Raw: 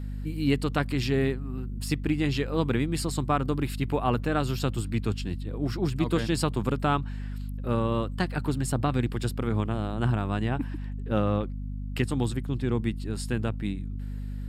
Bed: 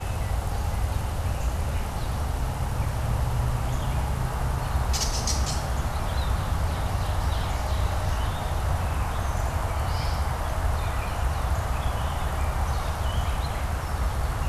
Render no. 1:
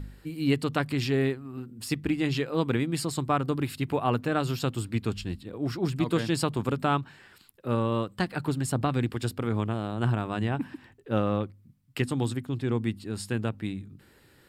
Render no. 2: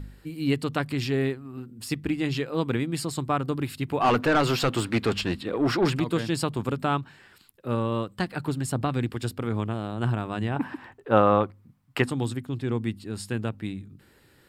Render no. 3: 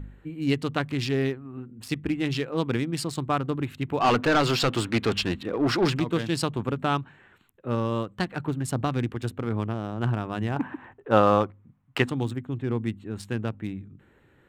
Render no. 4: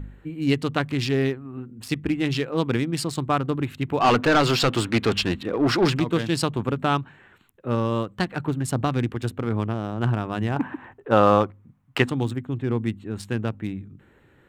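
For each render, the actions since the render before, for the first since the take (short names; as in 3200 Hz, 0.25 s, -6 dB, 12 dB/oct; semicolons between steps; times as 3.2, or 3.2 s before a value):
de-hum 50 Hz, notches 5
4–6 overdrive pedal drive 24 dB, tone 2300 Hz, clips at -12 dBFS; 10.56–12.1 bell 950 Hz +13.5 dB 2.3 oct
Wiener smoothing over 9 samples; dynamic EQ 4600 Hz, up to +5 dB, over -44 dBFS, Q 0.8
gain +3 dB; limiter -3 dBFS, peak gain reduction 2 dB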